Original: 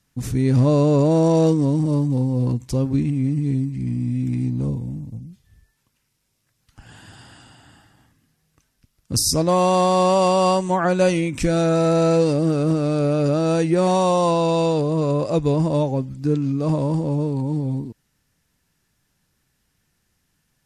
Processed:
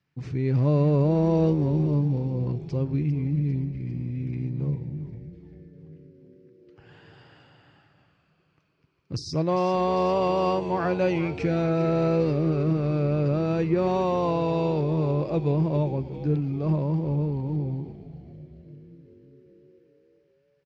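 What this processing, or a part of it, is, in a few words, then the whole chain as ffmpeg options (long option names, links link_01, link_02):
frequency-shifting delay pedal into a guitar cabinet: -filter_complex "[0:a]asplit=8[link_01][link_02][link_03][link_04][link_05][link_06][link_07][link_08];[link_02]adelay=399,afreqshift=-100,volume=-12dB[link_09];[link_03]adelay=798,afreqshift=-200,volume=-16.3dB[link_10];[link_04]adelay=1197,afreqshift=-300,volume=-20.6dB[link_11];[link_05]adelay=1596,afreqshift=-400,volume=-24.9dB[link_12];[link_06]adelay=1995,afreqshift=-500,volume=-29.2dB[link_13];[link_07]adelay=2394,afreqshift=-600,volume=-33.5dB[link_14];[link_08]adelay=2793,afreqshift=-700,volume=-37.8dB[link_15];[link_01][link_09][link_10][link_11][link_12][link_13][link_14][link_15]amix=inputs=8:normalize=0,highpass=89,equalizer=frequency=150:width_type=q:width=4:gain=7,equalizer=frequency=230:width_type=q:width=4:gain=-7,equalizer=frequency=370:width_type=q:width=4:gain=5,equalizer=frequency=2300:width_type=q:width=4:gain=4,equalizer=frequency=3600:width_type=q:width=4:gain=-5,lowpass=frequency=4400:width=0.5412,lowpass=frequency=4400:width=1.3066,volume=-7.5dB"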